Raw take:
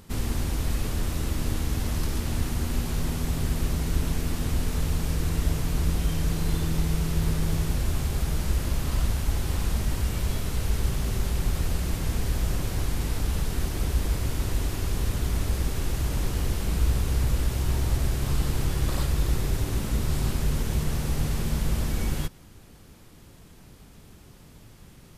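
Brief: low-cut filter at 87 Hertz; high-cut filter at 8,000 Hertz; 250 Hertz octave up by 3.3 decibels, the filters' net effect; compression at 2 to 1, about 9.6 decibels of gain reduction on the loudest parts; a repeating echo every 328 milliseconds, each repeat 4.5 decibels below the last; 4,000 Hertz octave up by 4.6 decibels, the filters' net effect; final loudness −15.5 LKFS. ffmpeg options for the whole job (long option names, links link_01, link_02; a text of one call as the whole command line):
ffmpeg -i in.wav -af "highpass=87,lowpass=8000,equalizer=frequency=250:width_type=o:gain=5,equalizer=frequency=4000:width_type=o:gain=6,acompressor=threshold=-42dB:ratio=2,aecho=1:1:328|656|984|1312|1640|1968|2296|2624|2952:0.596|0.357|0.214|0.129|0.0772|0.0463|0.0278|0.0167|0.01,volume=21dB" out.wav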